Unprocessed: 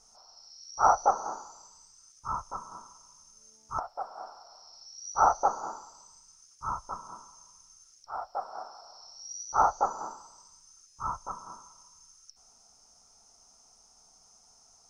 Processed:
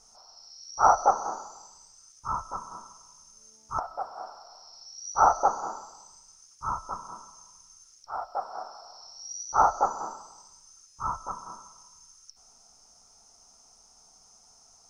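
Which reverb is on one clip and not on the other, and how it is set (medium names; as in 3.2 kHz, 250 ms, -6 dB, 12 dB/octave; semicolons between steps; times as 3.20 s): algorithmic reverb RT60 0.93 s, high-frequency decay 0.45×, pre-delay 85 ms, DRR 18.5 dB; trim +2.5 dB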